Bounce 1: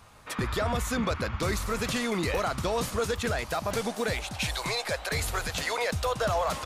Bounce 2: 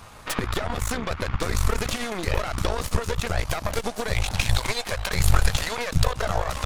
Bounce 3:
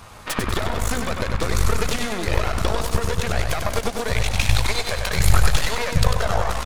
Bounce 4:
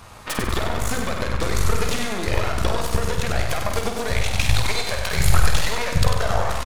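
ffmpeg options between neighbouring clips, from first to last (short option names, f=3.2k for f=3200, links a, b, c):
-af "acompressor=threshold=-35dB:ratio=16,asubboost=boost=9.5:cutoff=58,aeval=exprs='0.1*(cos(1*acos(clip(val(0)/0.1,-1,1)))-cos(1*PI/2))+0.0501*(cos(4*acos(clip(val(0)/0.1,-1,1)))-cos(4*PI/2))':c=same,volume=8.5dB"
-af "aecho=1:1:96|192|288|384|480|576:0.531|0.25|0.117|0.0551|0.0259|0.0122,volume=2dB"
-filter_complex "[0:a]asplit=2[a][b];[b]adelay=49,volume=-7dB[c];[a][c]amix=inputs=2:normalize=0,volume=-1dB"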